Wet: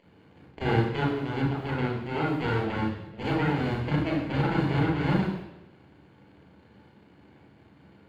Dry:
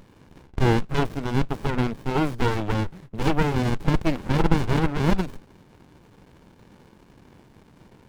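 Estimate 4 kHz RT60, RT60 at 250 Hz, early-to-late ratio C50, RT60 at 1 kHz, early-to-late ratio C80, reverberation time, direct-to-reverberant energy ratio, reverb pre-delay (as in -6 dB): 0.90 s, 0.85 s, 2.5 dB, 0.85 s, 6.5 dB, 0.85 s, -3.0 dB, 33 ms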